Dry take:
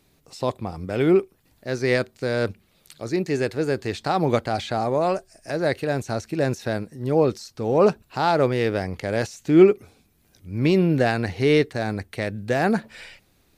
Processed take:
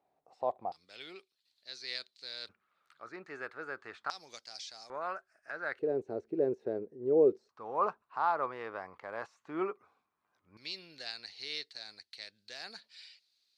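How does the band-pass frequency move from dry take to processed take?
band-pass, Q 4.8
740 Hz
from 0.72 s 4100 Hz
from 2.49 s 1300 Hz
from 4.1 s 5400 Hz
from 4.9 s 1400 Hz
from 5.79 s 410 Hz
from 7.49 s 1100 Hz
from 10.57 s 4400 Hz

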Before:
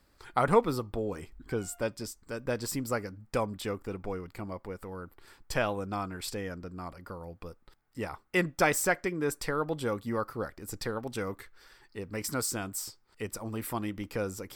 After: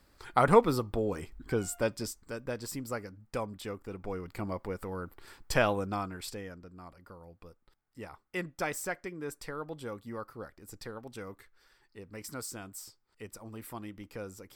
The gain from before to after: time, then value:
2.11 s +2 dB
2.53 s -5 dB
3.86 s -5 dB
4.44 s +3 dB
5.72 s +3 dB
6.66 s -8.5 dB

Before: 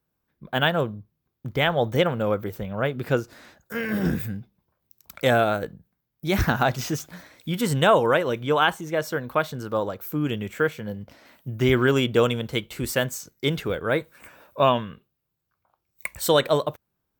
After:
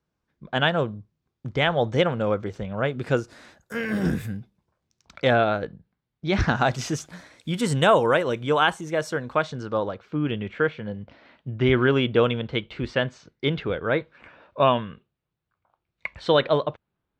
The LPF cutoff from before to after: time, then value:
LPF 24 dB/oct
2.49 s 6900 Hz
3.75 s 12000 Hz
4.36 s 12000 Hz
5.34 s 4600 Hz
6.28 s 4600 Hz
6.79 s 10000 Hz
9.06 s 10000 Hz
10.08 s 3900 Hz

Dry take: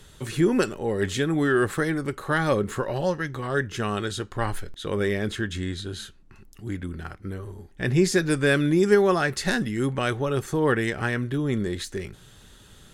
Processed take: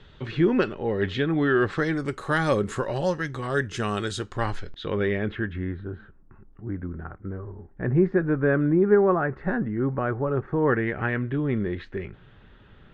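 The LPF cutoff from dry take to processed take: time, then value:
LPF 24 dB/oct
1.49 s 3700 Hz
2.22 s 9100 Hz
4.25 s 9100 Hz
4.91 s 3800 Hz
5.91 s 1500 Hz
10.27 s 1500 Hz
11.16 s 2600 Hz

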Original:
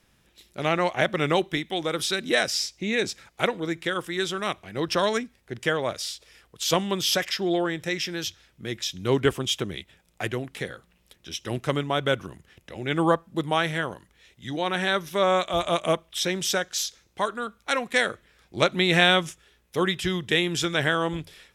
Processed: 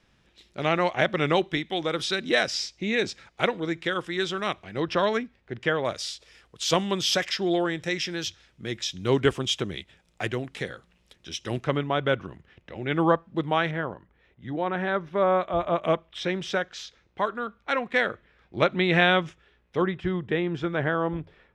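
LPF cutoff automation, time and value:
5300 Hz
from 4.82 s 3200 Hz
from 5.85 s 7200 Hz
from 11.64 s 3000 Hz
from 13.71 s 1500 Hz
from 15.83 s 2600 Hz
from 19.82 s 1400 Hz

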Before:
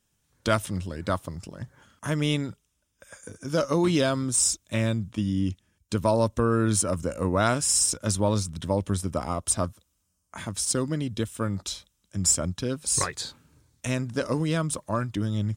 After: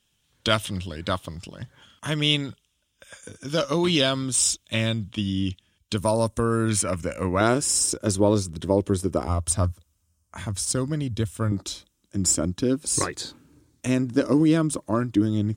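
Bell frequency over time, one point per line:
bell +12 dB 0.83 oct
3200 Hz
from 5.97 s 10000 Hz
from 6.69 s 2200 Hz
from 7.41 s 370 Hz
from 9.27 s 82 Hz
from 11.52 s 310 Hz

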